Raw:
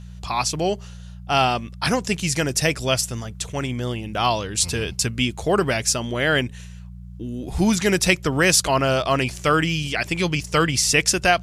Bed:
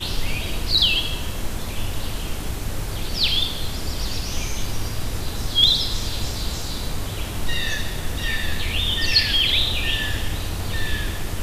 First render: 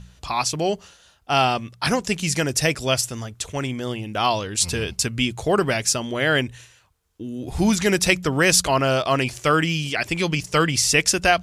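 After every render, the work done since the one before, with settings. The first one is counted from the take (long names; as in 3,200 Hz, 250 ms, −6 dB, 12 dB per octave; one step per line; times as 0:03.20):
hum removal 60 Hz, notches 3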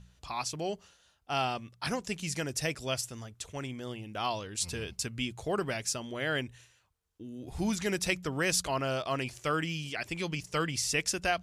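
level −12 dB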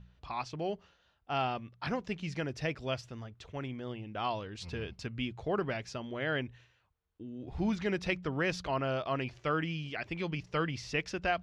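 high-frequency loss of the air 250 metres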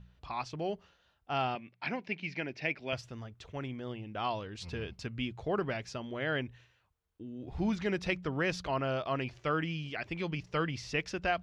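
0:01.55–0:02.93: loudspeaker in its box 210–4,800 Hz, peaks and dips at 480 Hz −5 dB, 1,200 Hz −9 dB, 2,300 Hz +10 dB, 3,500 Hz −4 dB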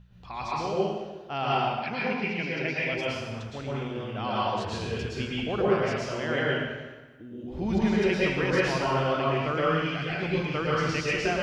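dense smooth reverb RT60 1.3 s, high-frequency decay 0.85×, pre-delay 100 ms, DRR −7 dB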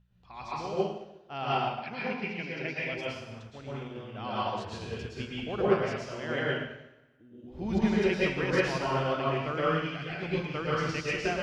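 expander for the loud parts 1.5 to 1, over −44 dBFS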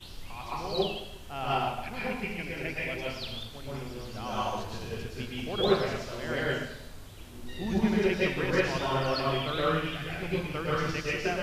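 mix in bed −19.5 dB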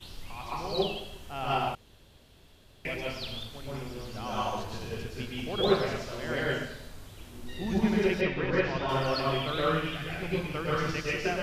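0:01.75–0:02.85: fill with room tone
0:08.21–0:08.89: high-frequency loss of the air 170 metres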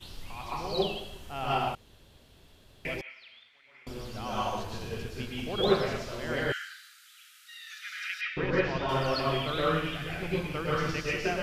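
0:03.01–0:03.87: resonant band-pass 2,100 Hz, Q 5.6
0:06.52–0:08.37: linear-phase brick-wall high-pass 1,200 Hz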